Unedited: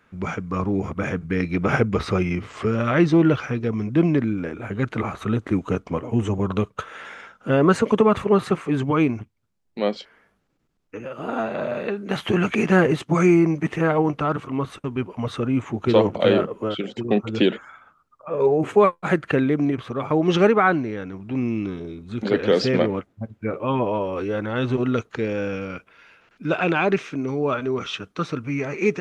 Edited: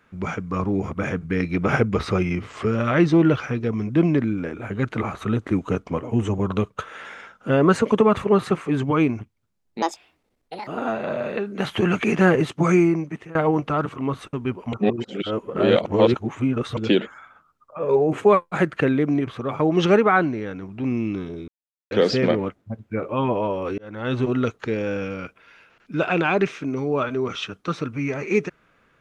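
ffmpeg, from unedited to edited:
-filter_complex "[0:a]asplit=9[s0][s1][s2][s3][s4][s5][s6][s7][s8];[s0]atrim=end=9.824[s9];[s1]atrim=start=9.82:end=11.18,asetpts=PTS-STARTPTS,asetrate=70560,aresample=44100[s10];[s2]atrim=start=11.176:end=13.86,asetpts=PTS-STARTPTS,afade=t=out:st=2.054:d=0.63:silence=0.0749894[s11];[s3]atrim=start=13.86:end=15.242,asetpts=PTS-STARTPTS,afade=t=in:d=0.004:c=hsin:silence=0.0749894[s12];[s4]atrim=start=15.238:end=17.282,asetpts=PTS-STARTPTS,areverse[s13];[s5]atrim=start=17.278:end=21.99,asetpts=PTS-STARTPTS,afade=t=out:st=4.708:d=0.004:c=hsin[s14];[s6]atrim=start=21.99:end=22.42,asetpts=PTS-STARTPTS,volume=0[s15];[s7]atrim=start=22.42:end=24.29,asetpts=PTS-STARTPTS,afade=t=in:d=0.004:c=hsin,afade=t=out:st=1.866:d=0.004:c=hsin[s16];[s8]atrim=start=24.29,asetpts=PTS-STARTPTS,afade=t=in:d=0.36[s17];[s9][s10]acrossfade=d=0.004:c1=hsin:c2=hsin[s18];[s11][s12]concat=n=2:v=0:a=1[s19];[s18][s19]acrossfade=d=0.004:c1=hsin:c2=hsin[s20];[s20][s13]acrossfade=d=0.004:c1=hsin:c2=hsin[s21];[s14][s15][s16][s17]concat=n=4:v=0:a=1[s22];[s21][s22]acrossfade=d=0.004:c1=hsin:c2=hsin"

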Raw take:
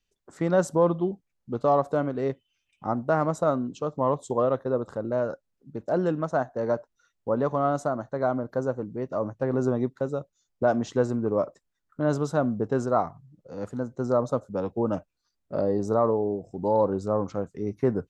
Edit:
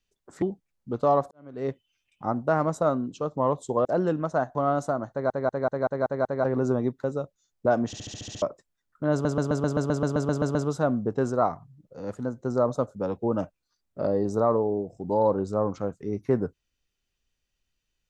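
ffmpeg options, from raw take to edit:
-filter_complex "[0:a]asplit=31[s0][s1][s2][s3][s4][s5][s6][s7][s8][s9][s10][s11][s12][s13][s14][s15][s16][s17][s18][s19][s20][s21][s22][s23][s24][s25][s26][s27][s28][s29][s30];[s0]atrim=end=0.422[s31];[s1]atrim=start=1.028:end=1.92,asetpts=PTS-STARTPTS,afade=t=out:st=0.888:d=0.004:c=hsin[s32];[s2]atrim=start=1.92:end=4.462,asetpts=PTS-STARTPTS,afade=t=in:d=0.39:c=qua[s33];[s3]atrim=start=5.838:end=6.542[s34];[s4]atrim=start=7.518:end=8.272[s35];[s5]atrim=start=8.078:end=8.272[s36];[s6]atrim=start=8.078:end=8.272[s37];[s7]atrim=start=8.078:end=8.272[s38];[s8]atrim=start=8.078:end=8.272[s39];[s9]atrim=start=8.078:end=8.272[s40];[s10]atrim=start=8.078:end=8.272[s41];[s11]atrim=start=9.408:end=10.902[s42];[s12]atrim=start=10.828:end=10.902[s43];[s13]atrim=start=10.828:end=10.902[s44];[s14]atrim=start=10.828:end=10.902[s45];[s15]atrim=start=10.828:end=10.902[s46];[s16]atrim=start=10.828:end=10.902[s47];[s17]atrim=start=10.828:end=10.902[s48];[s18]atrim=start=10.828:end=10.902[s49];[s19]atrim=start=11.388:end=12.222[s50];[s20]atrim=start=12.088:end=12.222[s51];[s21]atrim=start=12.088:end=12.222[s52];[s22]atrim=start=12.088:end=12.222[s53];[s23]atrim=start=12.088:end=12.222[s54];[s24]atrim=start=12.088:end=12.222[s55];[s25]atrim=start=12.088:end=12.222[s56];[s26]atrim=start=12.088:end=12.222[s57];[s27]atrim=start=12.088:end=12.222[s58];[s28]atrim=start=12.088:end=12.222[s59];[s29]atrim=start=12.088:end=12.222[s60];[s30]atrim=start=12.088[s61];[s32][s33]concat=n=2:v=0:a=1[s62];[s31][s62]acrossfade=d=0.004:c1=hsin:c2=hsin[s63];[s63][s34]acrossfade=d=0.004:c1=hsin:c2=hsin[s64];[s64][s35]acrossfade=d=0.004:c1=hsin:c2=hsin[s65];[s65][s36]acrossfade=d=0.004:c1=hsin:c2=hsin[s66];[s66][s37]acrossfade=d=0.004:c1=hsin:c2=hsin[s67];[s67][s38]acrossfade=d=0.004:c1=hsin:c2=hsin[s68];[s68][s39]acrossfade=d=0.004:c1=hsin:c2=hsin[s69];[s69][s40]acrossfade=d=0.004:c1=hsin:c2=hsin[s70];[s70][s41]acrossfade=d=0.004:c1=hsin:c2=hsin[s71];[s71][s42]acrossfade=d=0.004:c1=hsin:c2=hsin[s72];[s72][s43]acrossfade=d=0.004:c1=hsin:c2=hsin[s73];[s73][s44]acrossfade=d=0.004:c1=hsin:c2=hsin[s74];[s74][s45]acrossfade=d=0.004:c1=hsin:c2=hsin[s75];[s75][s46]acrossfade=d=0.004:c1=hsin:c2=hsin[s76];[s76][s47]acrossfade=d=0.004:c1=hsin:c2=hsin[s77];[s77][s48]acrossfade=d=0.004:c1=hsin:c2=hsin[s78];[s78][s49]acrossfade=d=0.004:c1=hsin:c2=hsin[s79];[s79][s50]acrossfade=d=0.004:c1=hsin:c2=hsin[s80];[s80][s51]acrossfade=d=0.004:c1=hsin:c2=hsin[s81];[s81][s52]acrossfade=d=0.004:c1=hsin:c2=hsin[s82];[s82][s53]acrossfade=d=0.004:c1=hsin:c2=hsin[s83];[s83][s54]acrossfade=d=0.004:c1=hsin:c2=hsin[s84];[s84][s55]acrossfade=d=0.004:c1=hsin:c2=hsin[s85];[s85][s56]acrossfade=d=0.004:c1=hsin:c2=hsin[s86];[s86][s57]acrossfade=d=0.004:c1=hsin:c2=hsin[s87];[s87][s58]acrossfade=d=0.004:c1=hsin:c2=hsin[s88];[s88][s59]acrossfade=d=0.004:c1=hsin:c2=hsin[s89];[s89][s60]acrossfade=d=0.004:c1=hsin:c2=hsin[s90];[s90][s61]acrossfade=d=0.004:c1=hsin:c2=hsin"

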